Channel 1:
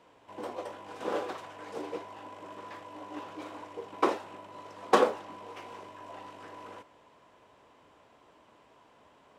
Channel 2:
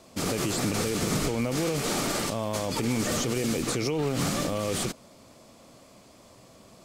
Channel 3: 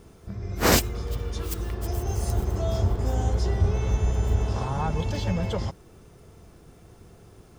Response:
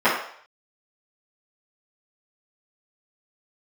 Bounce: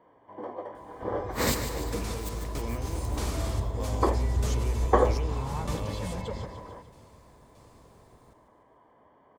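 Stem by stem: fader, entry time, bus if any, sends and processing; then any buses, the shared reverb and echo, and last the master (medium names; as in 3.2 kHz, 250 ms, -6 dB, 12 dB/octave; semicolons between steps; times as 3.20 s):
+1.0 dB, 0.00 s, no send, no echo send, Savitzky-Golay filter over 41 samples; band-stop 1.4 kHz, Q 5.3
-7.5 dB, 1.30 s, no send, no echo send, tremolo saw down 1.6 Hz, depth 85%
-8.0 dB, 0.75 s, no send, echo send -9 dB, rippled EQ curve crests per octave 1, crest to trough 6 dB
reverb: none
echo: feedback delay 148 ms, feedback 56%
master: none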